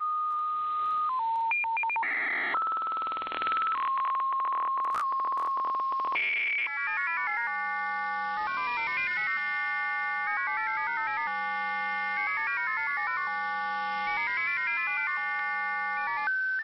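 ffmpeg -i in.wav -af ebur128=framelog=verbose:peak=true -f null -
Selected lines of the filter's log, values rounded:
Integrated loudness:
  I:         -28.6 LUFS
  Threshold: -38.6 LUFS
Loudness range:
  LRA:         0.9 LU
  Threshold: -48.6 LUFS
  LRA low:   -29.0 LUFS
  LRA high:  -28.1 LUFS
True peak:
  Peak:      -13.8 dBFS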